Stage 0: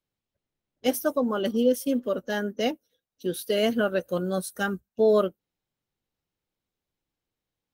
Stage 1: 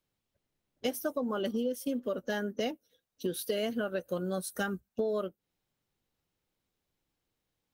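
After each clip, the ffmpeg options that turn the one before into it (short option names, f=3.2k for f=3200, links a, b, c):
-af "acompressor=threshold=-33dB:ratio=6,volume=3dB"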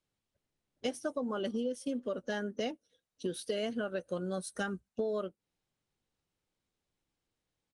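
-af "aresample=22050,aresample=44100,volume=-2.5dB"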